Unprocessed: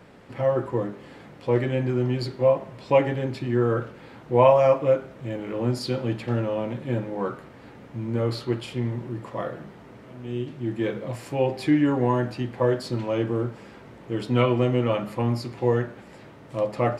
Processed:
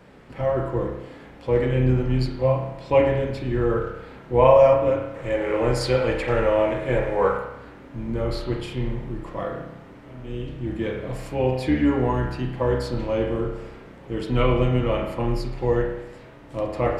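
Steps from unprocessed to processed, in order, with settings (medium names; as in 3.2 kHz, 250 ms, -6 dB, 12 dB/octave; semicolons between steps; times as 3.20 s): octave divider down 2 oct, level -6 dB; 5.14–7.38 s: graphic EQ 250/500/1000/2000/8000 Hz -6/+9/+5/+10/+8 dB; reverberation RT60 0.85 s, pre-delay 31 ms, DRR 2 dB; trim -1 dB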